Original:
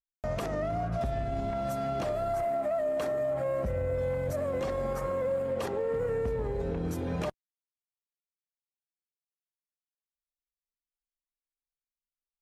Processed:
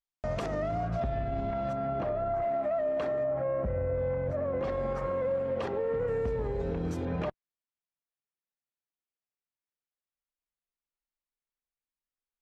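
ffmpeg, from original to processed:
ffmpeg -i in.wav -af "asetnsamples=nb_out_samples=441:pad=0,asendcmd='1 lowpass f 3200;1.73 lowpass f 1800;2.42 lowpass f 3300;3.24 lowpass f 1800;4.64 lowpass f 3600;6.08 lowpass f 6200;7.05 lowpass f 2800',lowpass=6800" out.wav

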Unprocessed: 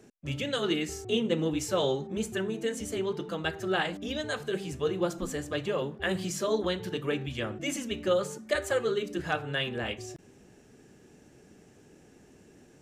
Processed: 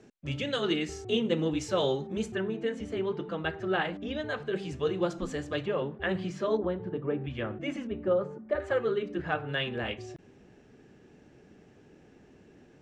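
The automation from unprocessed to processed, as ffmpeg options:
ffmpeg -i in.wav -af "asetnsamples=nb_out_samples=441:pad=0,asendcmd='2.32 lowpass f 2700;4.56 lowpass f 5000;5.65 lowpass f 2600;6.57 lowpass f 1000;7.24 lowpass f 2200;7.87 lowpass f 1100;8.6 lowpass f 2300;9.49 lowpass f 3900',lowpass=5500" out.wav

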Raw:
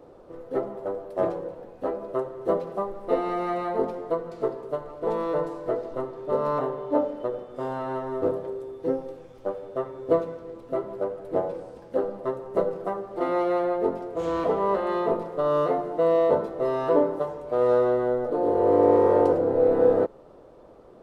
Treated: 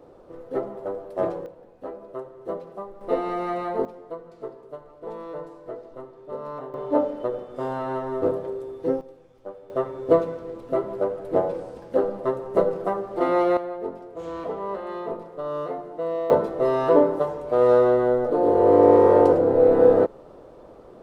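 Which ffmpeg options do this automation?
ffmpeg -i in.wav -af "asetnsamples=nb_out_samples=441:pad=0,asendcmd='1.46 volume volume -7dB;3.01 volume volume 0dB;3.85 volume volume -9dB;6.74 volume volume 2dB;9.01 volume volume -8dB;9.7 volume volume 4dB;13.57 volume volume -6.5dB;16.3 volume volume 4dB',volume=0dB" out.wav

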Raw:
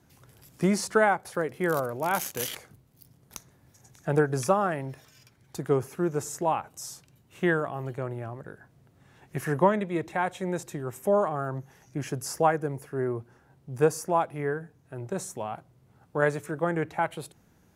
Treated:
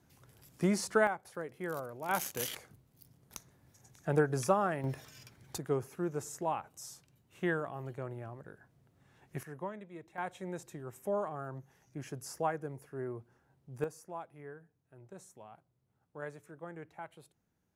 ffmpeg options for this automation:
ffmpeg -i in.wav -af "asetnsamples=nb_out_samples=441:pad=0,asendcmd='1.07 volume volume -12dB;2.09 volume volume -5dB;4.84 volume volume 2dB;5.58 volume volume -8dB;9.43 volume volume -19dB;10.18 volume volume -10.5dB;13.84 volume volume -18.5dB',volume=-5.5dB" out.wav

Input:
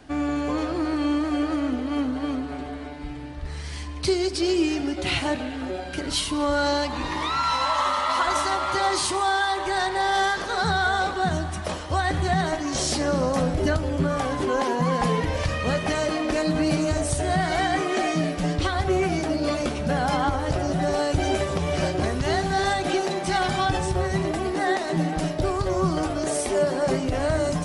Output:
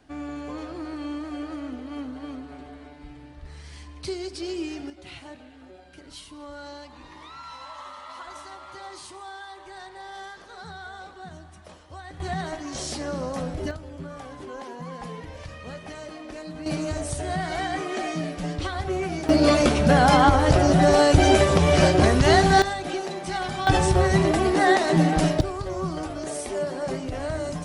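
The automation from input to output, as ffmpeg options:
ffmpeg -i in.wav -af "asetnsamples=nb_out_samples=441:pad=0,asendcmd='4.9 volume volume -17.5dB;12.2 volume volume -7dB;13.71 volume volume -14dB;16.66 volume volume -5dB;19.29 volume volume 7dB;22.62 volume volume -5.5dB;23.67 volume volume 5dB;25.41 volume volume -6dB',volume=-9dB" out.wav

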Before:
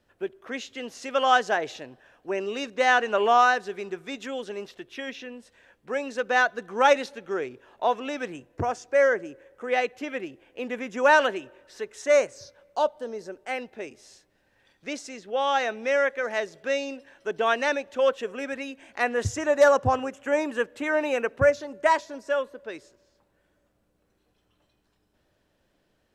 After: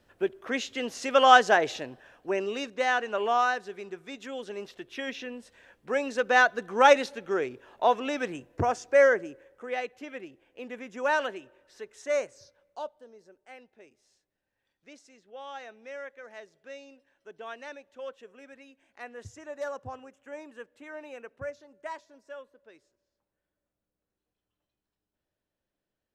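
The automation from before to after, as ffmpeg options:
ffmpeg -i in.wav -af "volume=10.5dB,afade=type=out:start_time=1.81:duration=1.1:silence=0.334965,afade=type=in:start_time=4.19:duration=1.03:silence=0.446684,afade=type=out:start_time=9:duration=0.76:silence=0.354813,afade=type=out:start_time=12.29:duration=0.8:silence=0.334965" out.wav

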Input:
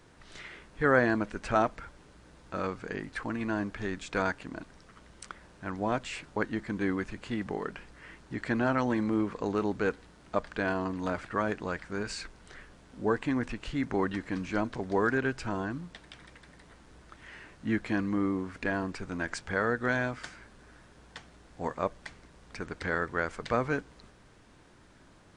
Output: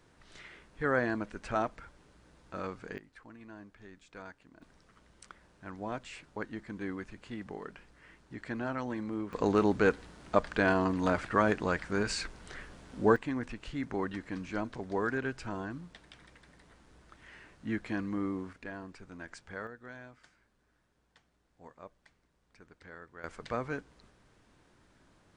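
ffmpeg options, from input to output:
ffmpeg -i in.wav -af "asetnsamples=nb_out_samples=441:pad=0,asendcmd='2.98 volume volume -18dB;4.62 volume volume -8dB;9.33 volume volume 3.5dB;13.16 volume volume -5dB;18.53 volume volume -12dB;19.67 volume volume -19dB;23.24 volume volume -6.5dB',volume=-5.5dB" out.wav

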